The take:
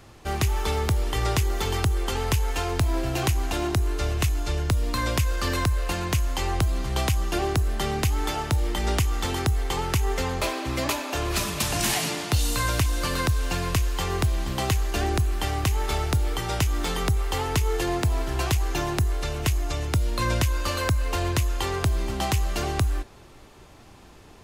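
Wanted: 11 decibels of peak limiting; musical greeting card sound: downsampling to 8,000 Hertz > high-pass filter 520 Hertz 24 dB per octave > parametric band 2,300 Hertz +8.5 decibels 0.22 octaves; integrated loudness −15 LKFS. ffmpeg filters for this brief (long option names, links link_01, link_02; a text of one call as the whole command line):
ffmpeg -i in.wav -af "alimiter=limit=-20.5dB:level=0:latency=1,aresample=8000,aresample=44100,highpass=frequency=520:width=0.5412,highpass=frequency=520:width=1.3066,equalizer=frequency=2300:width_type=o:width=0.22:gain=8.5,volume=19.5dB" out.wav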